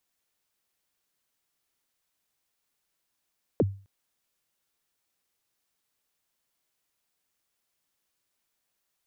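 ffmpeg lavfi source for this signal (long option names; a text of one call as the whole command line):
ffmpeg -f lavfi -i "aevalsrc='0.158*pow(10,-3*t/0.37)*sin(2*PI*(580*0.036/log(98/580)*(exp(log(98/580)*min(t,0.036)/0.036)-1)+98*max(t-0.036,0)))':duration=0.26:sample_rate=44100" out.wav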